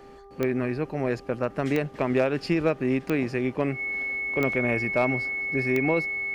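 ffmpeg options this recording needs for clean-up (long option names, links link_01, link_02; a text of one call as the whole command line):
ffmpeg -i in.wav -af "adeclick=threshold=4,bandreject=frequency=397.3:width_type=h:width=4,bandreject=frequency=794.6:width_type=h:width=4,bandreject=frequency=1191.9:width_type=h:width=4,bandreject=frequency=2200:width=30" out.wav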